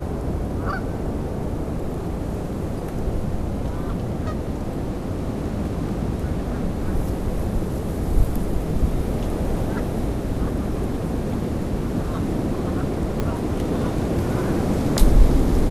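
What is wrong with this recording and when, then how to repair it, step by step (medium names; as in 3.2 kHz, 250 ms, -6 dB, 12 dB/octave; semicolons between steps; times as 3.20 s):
13.20 s: pop -11 dBFS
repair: de-click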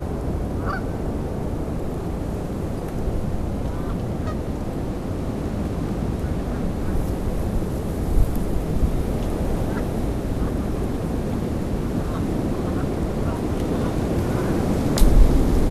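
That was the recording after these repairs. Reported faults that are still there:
13.20 s: pop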